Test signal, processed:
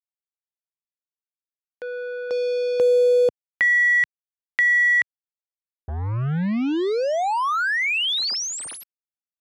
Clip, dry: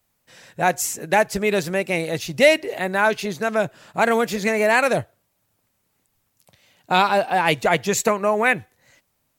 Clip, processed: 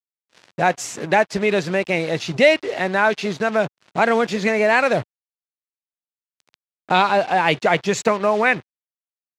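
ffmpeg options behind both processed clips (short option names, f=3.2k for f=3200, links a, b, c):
-filter_complex "[0:a]asplit=2[a][b];[b]acompressor=threshold=-30dB:ratio=5,volume=3dB[c];[a][c]amix=inputs=2:normalize=0,acrusher=bits=4:mix=0:aa=0.5,highpass=100,lowpass=5k,volume=-1dB"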